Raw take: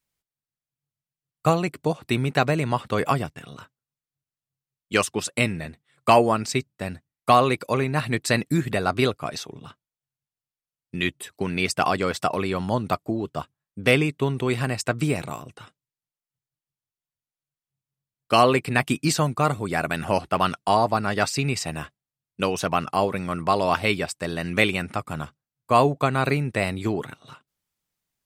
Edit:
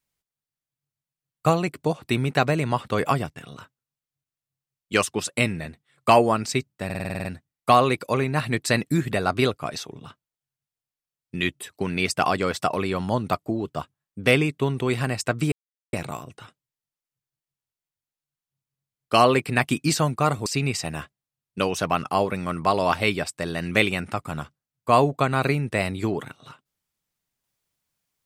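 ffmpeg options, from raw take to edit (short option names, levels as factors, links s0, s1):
-filter_complex "[0:a]asplit=11[s0][s1][s2][s3][s4][s5][s6][s7][s8][s9][s10];[s0]atrim=end=6.902[s11];[s1]atrim=start=6.848:end=6.902[s12];[s2]atrim=start=6.848:end=6.902[s13];[s3]atrim=start=6.848:end=6.902[s14];[s4]atrim=start=6.848:end=6.902[s15];[s5]atrim=start=6.848:end=6.902[s16];[s6]atrim=start=6.848:end=6.902[s17];[s7]atrim=start=6.848:end=6.902[s18];[s8]atrim=start=6.848:end=15.12,asetpts=PTS-STARTPTS,afade=t=out:st=8.268:d=0.004:c=hsin,apad=pad_dur=0.41[s19];[s9]atrim=start=15.12:end=19.652,asetpts=PTS-STARTPTS,afade=t=in:d=0.004:c=hsin[s20];[s10]atrim=start=21.278[s21];[s11][s12]acrossfade=d=0.004:c1=hsin:c2=hsin[s22];[s22][s13]acrossfade=d=0.004:c1=hsin:c2=hsin[s23];[s23][s14]acrossfade=d=0.004:c1=hsin:c2=hsin[s24];[s24][s15]acrossfade=d=0.004:c1=hsin:c2=hsin[s25];[s25][s16]acrossfade=d=0.004:c1=hsin:c2=hsin[s26];[s26][s17]acrossfade=d=0.004:c1=hsin:c2=hsin[s27];[s27][s18]acrossfade=d=0.004:c1=hsin:c2=hsin[s28];[s19][s20]concat=n=2:v=0:a=1[s29];[s28][s29]acrossfade=d=0.004:c1=hsin:c2=hsin[s30];[s30][s21]acrossfade=d=0.004:c1=hsin:c2=hsin"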